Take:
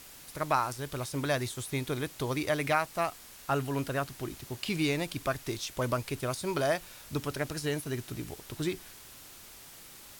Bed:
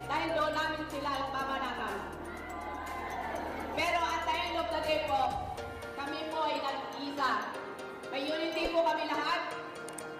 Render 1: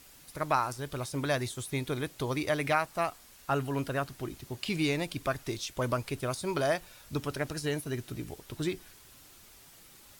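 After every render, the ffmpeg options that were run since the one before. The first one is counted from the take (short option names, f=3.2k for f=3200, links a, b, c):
-af "afftdn=nr=6:nf=-51"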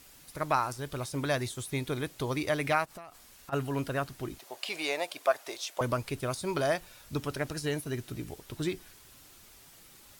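-filter_complex "[0:a]asplit=3[a][b][c];[a]afade=t=out:st=2.84:d=0.02[d];[b]acompressor=threshold=-41dB:ratio=20:attack=3.2:release=140:knee=1:detection=peak,afade=t=in:st=2.84:d=0.02,afade=t=out:st=3.52:d=0.02[e];[c]afade=t=in:st=3.52:d=0.02[f];[d][e][f]amix=inputs=3:normalize=0,asettb=1/sr,asplit=3[g][h][i];[g]atrim=end=4.394[j];[h]atrim=start=4.39:end=5.81,asetpts=PTS-STARTPTS,afade=t=in:d=0.004:c=qsin,afade=t=out:st=1.416:d=0.004:c=qsin,highpass=f=640:t=q:w=2.3[k];[i]atrim=start=5.806[l];[j][k]acrossfade=d=0.004:c1=hsin:c2=qsin[m];[m][l]acrossfade=d=0.004:c1=qsin:c2=hsin"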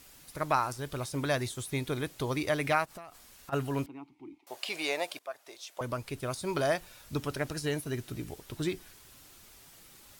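-filter_complex "[0:a]asettb=1/sr,asplit=3[a][b][c];[a]atrim=end=3.864[d];[b]atrim=start=3.86:end=4.47,asetpts=PTS-STARTPTS,afade=t=in:d=0.004:c=qsin,afade=t=out:st=0.606:d=0.004:c=qsin,asplit=3[e][f][g];[e]bandpass=f=300:t=q:w=8,volume=0dB[h];[f]bandpass=f=870:t=q:w=8,volume=-6dB[i];[g]bandpass=f=2.24k:t=q:w=8,volume=-9dB[j];[h][i][j]amix=inputs=3:normalize=0[k];[c]atrim=start=4.466[l];[d][k]acrossfade=d=0.004:c1=hsin:c2=qsin[m];[m][l]acrossfade=d=0.004:c1=qsin:c2=hsin,asplit=2[n][o];[n]atrim=end=5.19,asetpts=PTS-STARTPTS,afade=t=out:st=5.186:d=0.004:c=hsin:silence=0.133352[p];[o]atrim=start=5.19,asetpts=PTS-STARTPTS,afade=t=in:d=1.42:silence=0.133352[q];[p][q]concat=n=2:v=0:a=1"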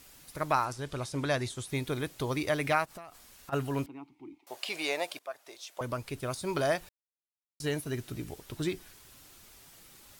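-filter_complex "[0:a]asettb=1/sr,asplit=3[a][b][c];[a]atrim=end=0.654[d];[b]atrim=start=0.65:end=1.7,asetpts=PTS-STARTPTS,afade=t=in:d=0.004:c=qsin,afade=t=out:st=1.046:d=0.004:c=qsin,lowpass=9.3k[e];[c]atrim=start=1.696[f];[d][e]acrossfade=d=0.004:c1=hsin:c2=qsin[g];[g][f]acrossfade=d=0.004:c1=qsin:c2=hsin,asplit=3[h][i][j];[h]atrim=end=6.89,asetpts=PTS-STARTPTS,afade=t=out:st=6.886:d=0.004:c=hsin[k];[i]atrim=start=6.89:end=7.6,asetpts=PTS-STARTPTS,volume=0[l];[j]atrim=start=7.6,asetpts=PTS-STARTPTS,afade=t=in:d=0.004:c=hsin[m];[k][l][m]concat=n=3:v=0:a=1"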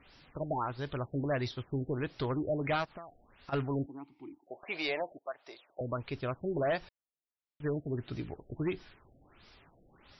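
-af "asoftclip=type=hard:threshold=-26dB,afftfilt=real='re*lt(b*sr/1024,750*pow(5900/750,0.5+0.5*sin(2*PI*1.5*pts/sr)))':imag='im*lt(b*sr/1024,750*pow(5900/750,0.5+0.5*sin(2*PI*1.5*pts/sr)))':win_size=1024:overlap=0.75"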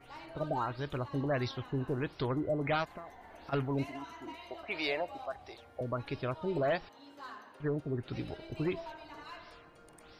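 -filter_complex "[1:a]volume=-16.5dB[a];[0:a][a]amix=inputs=2:normalize=0"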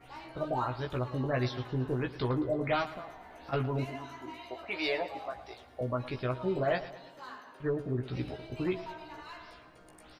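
-filter_complex "[0:a]asplit=2[a][b];[b]adelay=16,volume=-4dB[c];[a][c]amix=inputs=2:normalize=0,aecho=1:1:111|222|333|444|555:0.178|0.096|0.0519|0.028|0.0151"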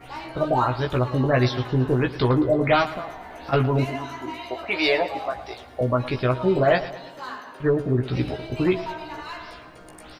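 -af "volume=11dB"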